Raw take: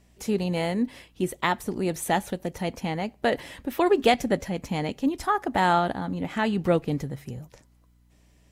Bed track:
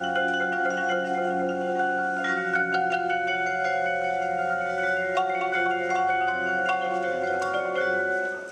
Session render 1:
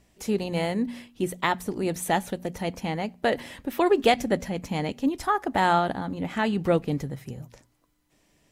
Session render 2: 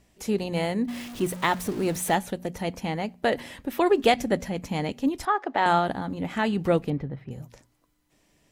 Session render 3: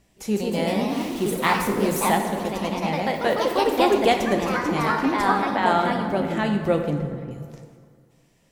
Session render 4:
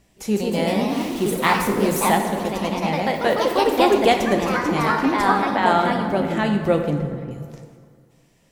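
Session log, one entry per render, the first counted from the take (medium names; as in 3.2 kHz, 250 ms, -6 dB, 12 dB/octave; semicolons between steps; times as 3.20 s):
de-hum 60 Hz, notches 4
0.88–2.15 s: jump at every zero crossing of -34.5 dBFS; 5.25–5.66 s: three-band isolator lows -20 dB, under 270 Hz, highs -24 dB, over 5 kHz; 6.90–7.31 s: distance through air 380 m
ever faster or slower copies 176 ms, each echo +2 st, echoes 3; plate-style reverb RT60 2 s, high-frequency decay 0.55×, DRR 4.5 dB
trim +2.5 dB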